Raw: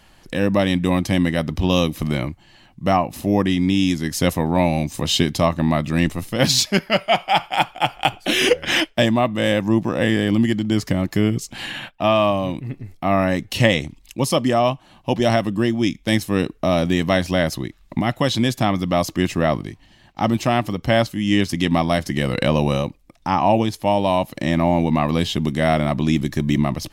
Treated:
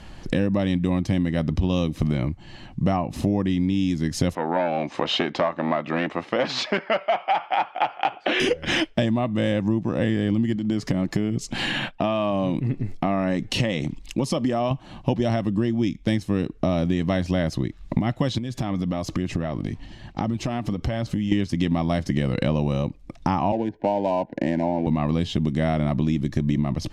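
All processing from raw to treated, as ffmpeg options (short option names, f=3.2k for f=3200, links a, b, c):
-filter_complex "[0:a]asettb=1/sr,asplit=3[a][b][c];[a]atrim=end=4.354[d];[b]atrim=start=4.35:end=8.4,asetpts=PTS-STARTPTS,afade=t=in:d=0.004:c=qsin,afade=t=out:st=4.046:d=0.004:c=qsin,acontrast=60,volume=7dB,asoftclip=hard,volume=-7dB,highpass=580,lowpass=2.1k[e];[c]atrim=start=8.396[f];[d][e]acrossfade=d=0.004:c1=hsin:c2=qsin[g];[g][f]acrossfade=d=0.004:c1=qsin:c2=hsin,asettb=1/sr,asplit=3[h][i][j];[h]atrim=end=10.564[k];[i]atrim=start=10.56:end=14.71,asetpts=PTS-STARTPTS,afade=t=in:d=0.004:c=qsin,afade=t=out:st=4.146:d=0.004:c=qsin,equalizer=f=76:w=1.6:g=-13.5,acompressor=threshold=-25dB:ratio=2:attack=3.2:release=140:knee=1:detection=peak[l];[j]atrim=start=14.706[m];[k][l]acrossfade=d=0.004:c1=hsin:c2=qsin[n];[n][m]acrossfade=d=0.004:c1=qsin:c2=hsin,asettb=1/sr,asplit=3[o][p][q];[o]atrim=end=18.384[r];[p]atrim=start=18.38:end=21.32,asetpts=PTS-STARTPTS,afade=t=in:d=0.004:c=qsin,afade=t=out:st=2.936:d=0.004:c=qsin,acompressor=threshold=-32dB:ratio=6:attack=3.2:release=140:knee=1:detection=peak,aphaser=in_gain=1:out_gain=1:delay=4.5:decay=0.25:speed=1.1:type=sinusoidal[s];[q]atrim=start=21.316[t];[r][s]acrossfade=d=0.004:c1=hsin:c2=qsin[u];[u][t]acrossfade=d=0.004:c1=qsin:c2=hsin,asettb=1/sr,asplit=3[v][w][x];[v]atrim=end=23.524[y];[w]atrim=start=23.52:end=24.87,asetpts=PTS-STARTPTS,afade=t=in:d=0.004:c=qsin,afade=t=out:st=1.346:d=0.004:c=qsin,acrossover=split=240 2400:gain=0.158 1 0.141[z][aa][ab];[z][aa][ab]amix=inputs=3:normalize=0,adynamicsmooth=sensitivity=3.5:basefreq=1.2k,asuperstop=centerf=1200:order=20:qfactor=3[ac];[x]atrim=start=24.866[ad];[y][ac]acrossfade=d=0.004:c1=hsin:c2=qsin[ae];[ae][ad]acrossfade=d=0.004:c1=qsin:c2=hsin,lowpass=7.6k,lowshelf=f=440:g=9,acompressor=threshold=-24dB:ratio=6,volume=4dB"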